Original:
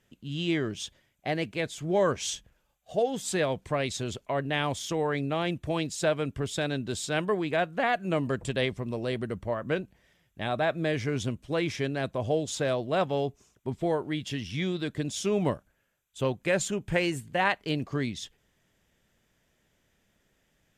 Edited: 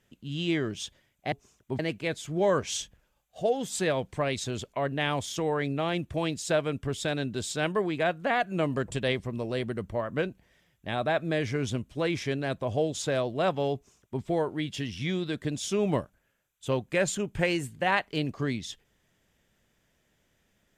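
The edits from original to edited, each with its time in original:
13.28–13.75 copy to 1.32

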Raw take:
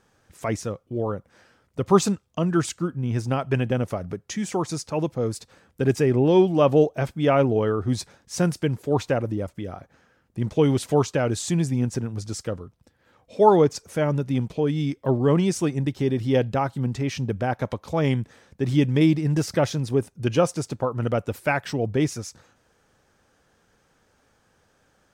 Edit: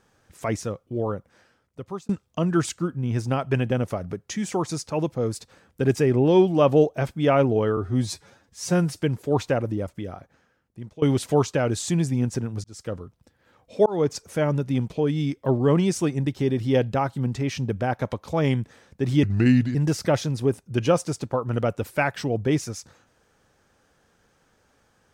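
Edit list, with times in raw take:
1.13–2.09 fade out
7.77–8.57 stretch 1.5×
9.59–10.62 fade out, to -21.5 dB
12.24–12.57 fade in
13.46–13.73 fade in
18.83–19.24 speed 79%

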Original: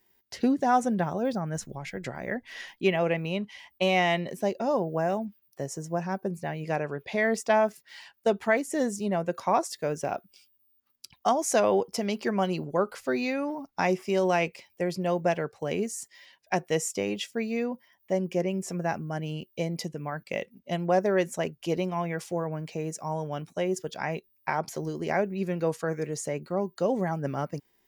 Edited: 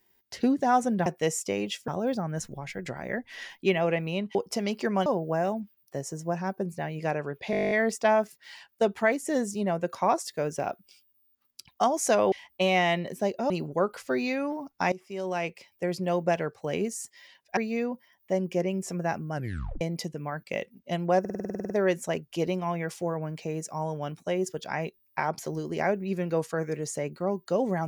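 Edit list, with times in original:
3.53–4.71 swap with 11.77–12.48
7.16 stutter 0.02 s, 11 plays
13.9–14.91 fade in, from -17.5 dB
16.55–17.37 move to 1.06
19.14 tape stop 0.47 s
21 stutter 0.05 s, 11 plays

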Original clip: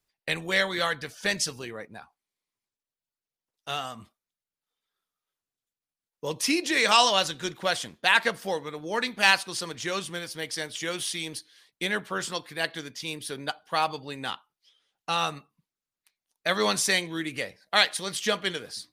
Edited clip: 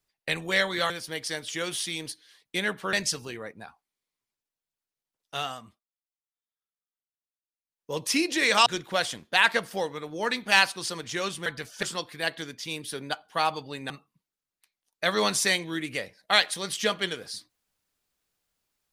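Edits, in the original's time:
0.9–1.27 swap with 10.17–12.2
3.8–6.3 dip -16.5 dB, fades 0.35 s
7–7.37 cut
14.27–15.33 cut

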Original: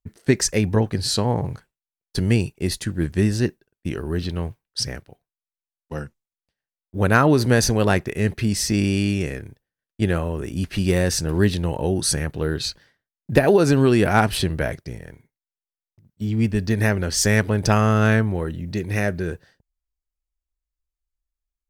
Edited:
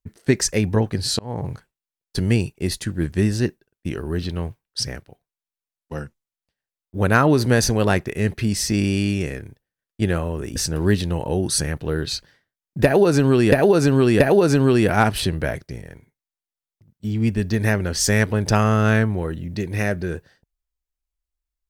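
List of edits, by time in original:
1.19–1.49 fade in
10.56–11.09 cut
13.37–14.05 loop, 3 plays

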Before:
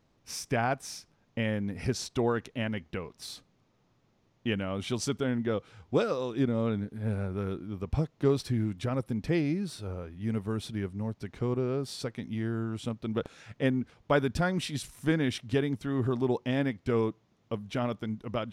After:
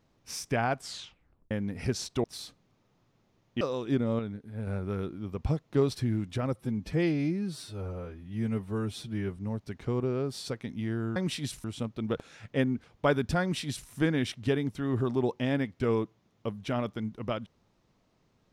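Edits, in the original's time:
0.77 tape stop 0.74 s
2.24–3.13 cut
4.5–6.09 cut
6.67–7.15 gain -5.5 dB
9.03–10.91 stretch 1.5×
14.47–14.95 copy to 12.7

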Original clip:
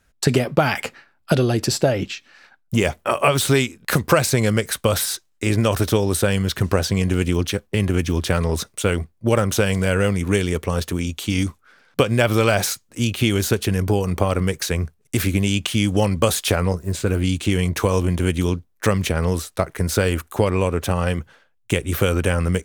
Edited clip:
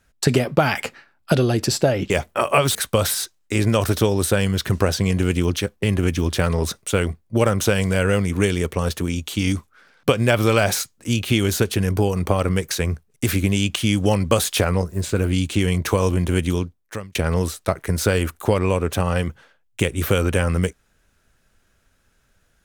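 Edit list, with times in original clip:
2.1–2.8 cut
3.45–4.66 cut
18.37–19.06 fade out

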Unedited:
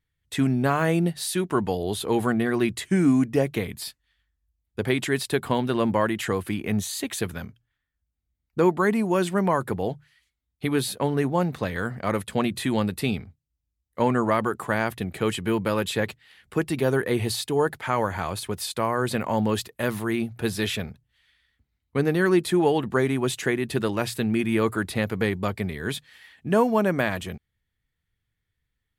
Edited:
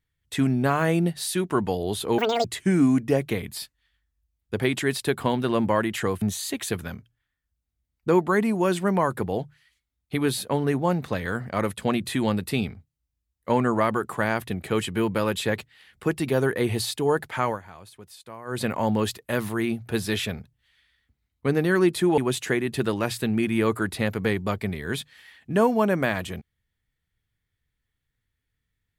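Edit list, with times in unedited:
2.18–2.7 speed 195%
6.47–6.72 cut
17.95–19.12 dip -16 dB, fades 0.17 s
22.68–23.14 cut

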